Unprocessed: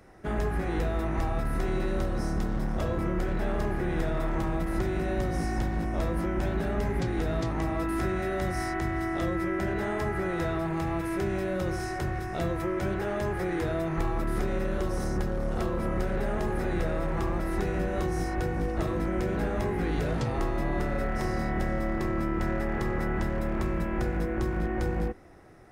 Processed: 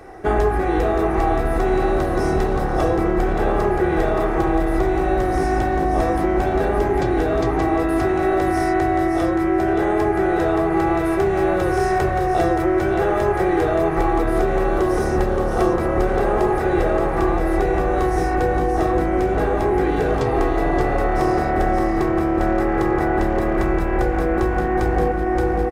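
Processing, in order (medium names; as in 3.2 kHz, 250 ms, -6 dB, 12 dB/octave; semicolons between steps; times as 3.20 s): comb 2.6 ms, depth 47%; on a send: delay 574 ms -5.5 dB; on the sum: gain riding 0.5 s; peaking EQ 670 Hz +8.5 dB 2.3 oct; trim +4 dB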